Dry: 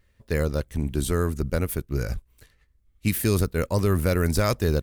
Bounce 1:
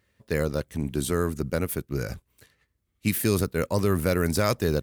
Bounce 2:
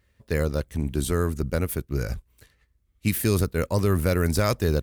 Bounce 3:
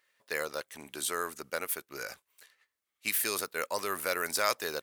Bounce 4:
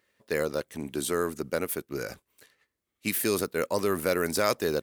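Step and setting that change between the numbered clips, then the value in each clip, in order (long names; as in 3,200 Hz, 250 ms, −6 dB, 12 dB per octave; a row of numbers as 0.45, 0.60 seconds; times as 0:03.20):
high-pass filter, corner frequency: 110, 43, 810, 310 Hertz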